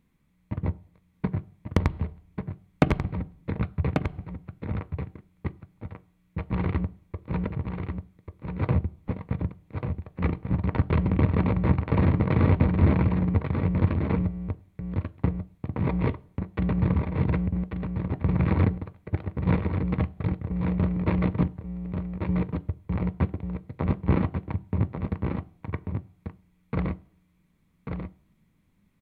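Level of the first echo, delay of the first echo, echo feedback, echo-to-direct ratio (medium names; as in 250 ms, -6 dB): -6.0 dB, 1140 ms, no regular repeats, -6.0 dB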